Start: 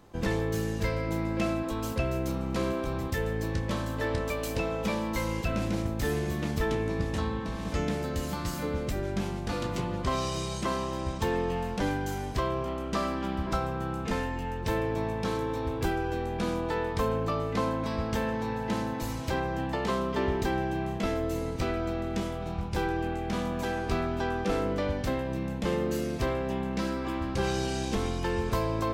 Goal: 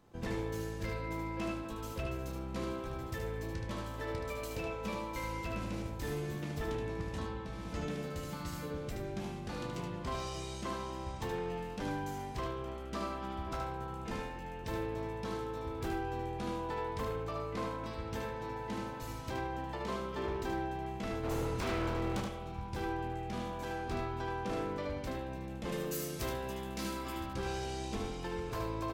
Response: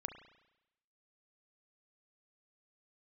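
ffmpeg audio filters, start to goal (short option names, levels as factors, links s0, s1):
-filter_complex "[0:a]asplit=3[s0][s1][s2];[s0]afade=t=out:st=21.23:d=0.02[s3];[s1]acontrast=73,afade=t=in:st=21.23:d=0.02,afade=t=out:st=22.2:d=0.02[s4];[s2]afade=t=in:st=22.2:d=0.02[s5];[s3][s4][s5]amix=inputs=3:normalize=0,asettb=1/sr,asplit=3[s6][s7][s8];[s6]atrim=end=25.724[s9];[s7]atrim=start=25.72:end=27.26,asetpts=PTS-STARTPTS,afade=t=in:d=0.004:c=qsin,afade=t=out:st=1.536:d=0.004:c=qsin,aemphasis=mode=production:type=75kf[s10];[s8]atrim=start=27.256[s11];[s9][s10]acrossfade=d=0.004:c1=hsin:c2=qsin[s12];[s12][s11]acrossfade=d=0.004:c1=qsin:c2=hsin,aeval=exprs='0.0944*(abs(mod(val(0)/0.0944+3,4)-2)-1)':c=same,aecho=1:1:75:0.562[s13];[1:a]atrim=start_sample=2205[s14];[s13][s14]afir=irnorm=-1:irlink=0,volume=0.473"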